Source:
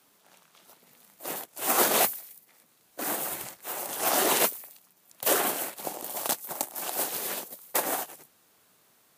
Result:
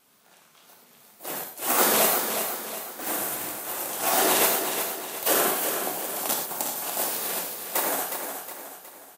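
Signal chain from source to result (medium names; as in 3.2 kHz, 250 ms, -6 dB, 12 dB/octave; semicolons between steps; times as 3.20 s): 2.16–3.07 s: hard clipper -33 dBFS, distortion -29 dB; gated-style reverb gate 140 ms flat, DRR 1 dB; wow and flutter 55 cents; feedback delay 364 ms, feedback 46%, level -7 dB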